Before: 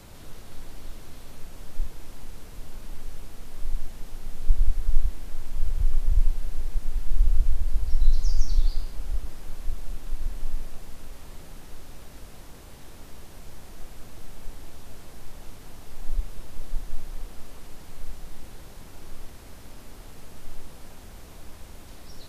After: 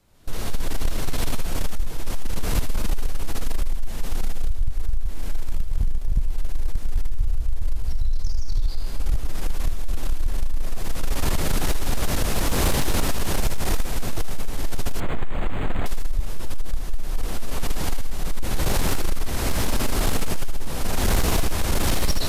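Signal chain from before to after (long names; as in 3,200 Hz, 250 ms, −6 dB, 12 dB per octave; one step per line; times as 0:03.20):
0:05.42–0:06.16: gain on one half-wave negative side −7 dB
camcorder AGC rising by 28 dB per second
noise gate with hold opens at −24 dBFS
downward compressor 10 to 1, threshold −14 dBFS, peak gain reduction 8 dB
sine wavefolder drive 5 dB, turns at −9.5 dBFS
feedback echo with a high-pass in the loop 78 ms, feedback 50%, high-pass 1,100 Hz, level −9 dB
0:15.00–0:15.86: linearly interpolated sample-rate reduction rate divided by 8×
level −4 dB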